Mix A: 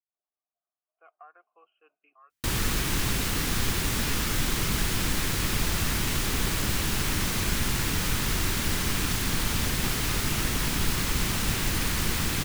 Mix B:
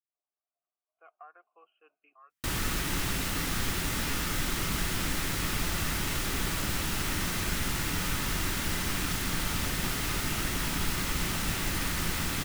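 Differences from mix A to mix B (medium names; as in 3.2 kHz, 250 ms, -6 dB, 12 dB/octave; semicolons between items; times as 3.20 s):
background -4.5 dB; reverb: on, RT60 0.35 s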